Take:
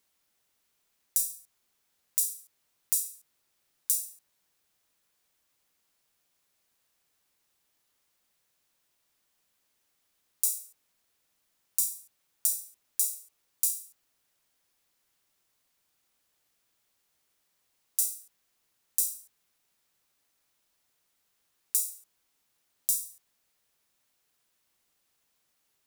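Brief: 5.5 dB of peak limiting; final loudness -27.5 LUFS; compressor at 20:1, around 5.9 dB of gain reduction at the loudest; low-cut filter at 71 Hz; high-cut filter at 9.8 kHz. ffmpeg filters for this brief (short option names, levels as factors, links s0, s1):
-af "highpass=71,lowpass=9800,acompressor=threshold=0.0282:ratio=20,volume=5.01,alimiter=limit=0.794:level=0:latency=1"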